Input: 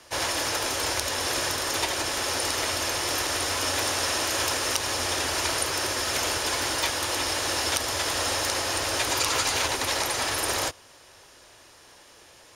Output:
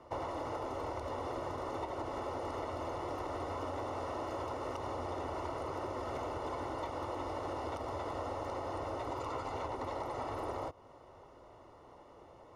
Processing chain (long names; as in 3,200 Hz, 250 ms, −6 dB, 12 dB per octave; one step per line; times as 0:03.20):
Savitzky-Golay smoothing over 65 samples
downward compressor, threshold −37 dBFS, peak gain reduction 10 dB
level +1 dB